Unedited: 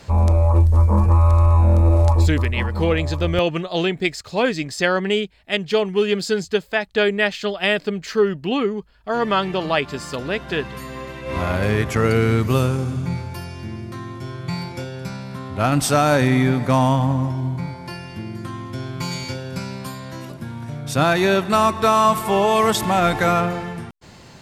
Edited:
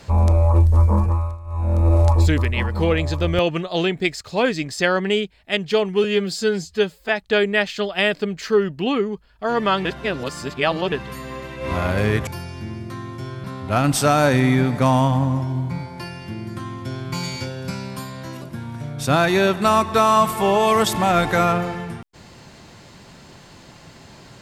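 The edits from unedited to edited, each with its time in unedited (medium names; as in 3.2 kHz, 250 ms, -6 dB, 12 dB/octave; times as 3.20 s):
0.89–1.94 s: dip -22.5 dB, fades 0.49 s
6.04–6.74 s: stretch 1.5×
9.50–10.57 s: reverse
11.92–13.29 s: delete
14.46–15.32 s: delete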